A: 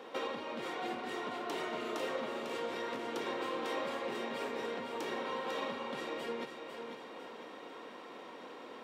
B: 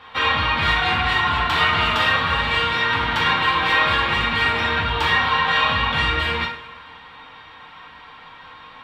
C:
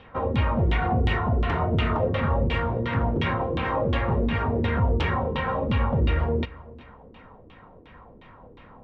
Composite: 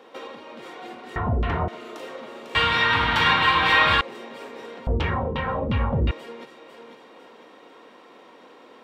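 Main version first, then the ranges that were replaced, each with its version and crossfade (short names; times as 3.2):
A
1.16–1.68 from C
2.55–4.01 from B
4.87–6.11 from C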